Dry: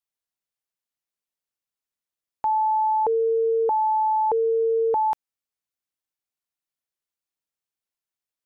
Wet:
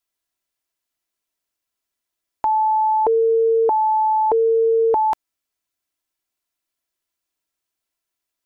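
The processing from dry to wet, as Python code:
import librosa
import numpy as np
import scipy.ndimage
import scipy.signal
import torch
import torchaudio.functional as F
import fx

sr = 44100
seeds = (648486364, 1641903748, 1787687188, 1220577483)

y = x + 0.45 * np.pad(x, (int(3.0 * sr / 1000.0), 0))[:len(x)]
y = y * librosa.db_to_amplitude(7.0)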